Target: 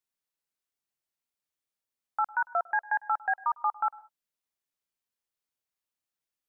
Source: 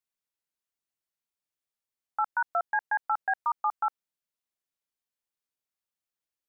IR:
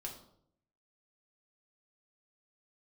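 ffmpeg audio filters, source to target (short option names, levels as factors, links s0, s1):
-filter_complex "[0:a]asplit=2[s0][s1];[1:a]atrim=start_sample=2205,afade=t=out:st=0.15:d=0.01,atrim=end_sample=7056,adelay=102[s2];[s1][s2]afir=irnorm=-1:irlink=0,volume=0.126[s3];[s0][s3]amix=inputs=2:normalize=0"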